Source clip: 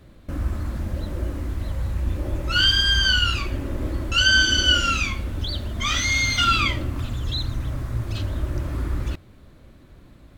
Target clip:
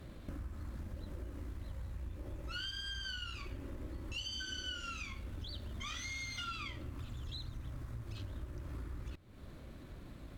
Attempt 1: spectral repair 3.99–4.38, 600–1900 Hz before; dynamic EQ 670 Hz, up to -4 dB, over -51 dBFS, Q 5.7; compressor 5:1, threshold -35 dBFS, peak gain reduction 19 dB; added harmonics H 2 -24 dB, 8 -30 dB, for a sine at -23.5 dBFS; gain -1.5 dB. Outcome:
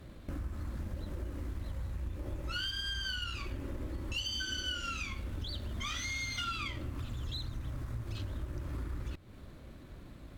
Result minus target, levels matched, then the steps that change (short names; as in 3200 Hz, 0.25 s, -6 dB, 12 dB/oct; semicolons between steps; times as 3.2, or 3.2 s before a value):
compressor: peak gain reduction -5 dB
change: compressor 5:1, threshold -41.5 dBFS, peak gain reduction 24 dB